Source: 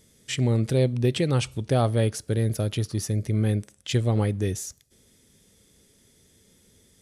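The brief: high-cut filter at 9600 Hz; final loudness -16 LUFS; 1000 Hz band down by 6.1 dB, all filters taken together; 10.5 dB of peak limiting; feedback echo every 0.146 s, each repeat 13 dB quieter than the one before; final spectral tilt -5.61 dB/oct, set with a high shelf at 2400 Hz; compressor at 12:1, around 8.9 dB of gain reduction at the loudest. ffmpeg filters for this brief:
-af "lowpass=9.6k,equalizer=f=1k:t=o:g=-8.5,highshelf=f=2.4k:g=-6,acompressor=threshold=-27dB:ratio=12,alimiter=level_in=5.5dB:limit=-24dB:level=0:latency=1,volume=-5.5dB,aecho=1:1:146|292|438:0.224|0.0493|0.0108,volume=22dB"

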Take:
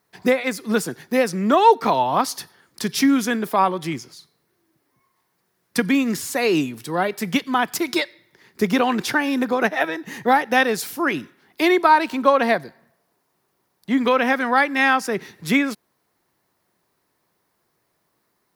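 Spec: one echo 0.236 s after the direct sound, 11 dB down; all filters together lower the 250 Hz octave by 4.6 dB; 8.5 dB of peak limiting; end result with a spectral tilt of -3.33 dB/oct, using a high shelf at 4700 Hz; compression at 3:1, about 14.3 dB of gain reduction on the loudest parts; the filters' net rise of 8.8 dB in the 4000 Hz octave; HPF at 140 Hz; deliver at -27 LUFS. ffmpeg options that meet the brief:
-af "highpass=140,equalizer=f=250:t=o:g=-5,equalizer=f=4k:t=o:g=9,highshelf=f=4.7k:g=4,acompressor=threshold=-29dB:ratio=3,alimiter=limit=-19dB:level=0:latency=1,aecho=1:1:236:0.282,volume=3.5dB"

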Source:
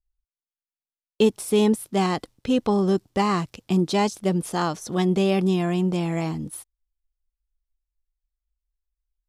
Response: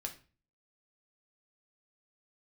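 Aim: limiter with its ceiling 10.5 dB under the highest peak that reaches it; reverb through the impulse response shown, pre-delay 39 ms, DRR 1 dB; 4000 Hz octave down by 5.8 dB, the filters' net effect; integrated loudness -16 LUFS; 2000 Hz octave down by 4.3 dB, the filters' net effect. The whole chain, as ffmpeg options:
-filter_complex "[0:a]equalizer=f=2k:t=o:g=-3.5,equalizer=f=4k:t=o:g=-6.5,alimiter=limit=-18.5dB:level=0:latency=1,asplit=2[a][b];[1:a]atrim=start_sample=2205,adelay=39[c];[b][c]afir=irnorm=-1:irlink=0,volume=0.5dB[d];[a][d]amix=inputs=2:normalize=0,volume=8.5dB"

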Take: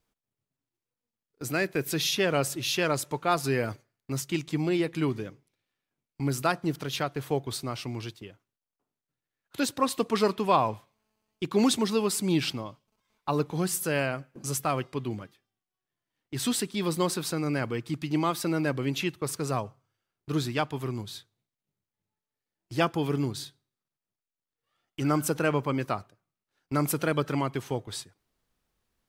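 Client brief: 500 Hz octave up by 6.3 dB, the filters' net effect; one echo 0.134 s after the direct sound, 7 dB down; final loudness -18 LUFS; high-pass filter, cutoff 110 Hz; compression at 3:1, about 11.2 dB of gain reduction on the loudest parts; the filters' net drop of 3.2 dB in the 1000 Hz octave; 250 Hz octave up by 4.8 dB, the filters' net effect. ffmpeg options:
-af "highpass=110,equalizer=f=250:t=o:g=4,equalizer=f=500:t=o:g=8.5,equalizer=f=1k:t=o:g=-8,acompressor=threshold=-29dB:ratio=3,aecho=1:1:134:0.447,volume=14dB"

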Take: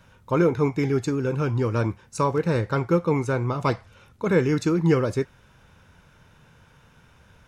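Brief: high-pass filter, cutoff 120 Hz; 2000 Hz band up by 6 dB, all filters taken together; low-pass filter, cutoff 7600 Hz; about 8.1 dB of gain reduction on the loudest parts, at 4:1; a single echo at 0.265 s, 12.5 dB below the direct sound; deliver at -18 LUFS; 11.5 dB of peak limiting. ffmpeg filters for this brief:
-af "highpass=120,lowpass=7.6k,equalizer=f=2k:t=o:g=8,acompressor=threshold=-24dB:ratio=4,alimiter=limit=-23dB:level=0:latency=1,aecho=1:1:265:0.237,volume=15dB"

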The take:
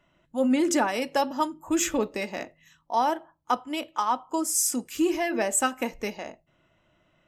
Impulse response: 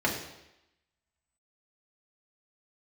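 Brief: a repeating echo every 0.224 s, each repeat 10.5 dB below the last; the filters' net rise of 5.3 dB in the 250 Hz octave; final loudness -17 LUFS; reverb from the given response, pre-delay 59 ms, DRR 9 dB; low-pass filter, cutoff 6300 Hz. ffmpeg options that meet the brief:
-filter_complex "[0:a]lowpass=6.3k,equalizer=f=250:t=o:g=6.5,aecho=1:1:224|448|672:0.299|0.0896|0.0269,asplit=2[a][b];[1:a]atrim=start_sample=2205,adelay=59[c];[b][c]afir=irnorm=-1:irlink=0,volume=-20.5dB[d];[a][d]amix=inputs=2:normalize=0,volume=6.5dB"

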